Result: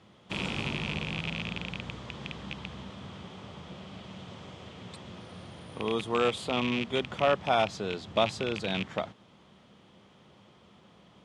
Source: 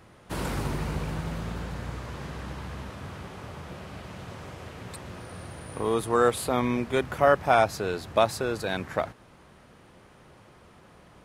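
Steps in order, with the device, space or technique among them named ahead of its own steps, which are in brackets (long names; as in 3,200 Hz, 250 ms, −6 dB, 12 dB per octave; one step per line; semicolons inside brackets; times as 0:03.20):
0:08.07–0:08.83: low-shelf EQ 300 Hz +3.5 dB
car door speaker with a rattle (loose part that buzzes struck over −32 dBFS, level −18 dBFS; loudspeaker in its box 86–7,700 Hz, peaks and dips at 200 Hz +7 dB, 1,600 Hz −5 dB, 3,300 Hz +10 dB)
level −5 dB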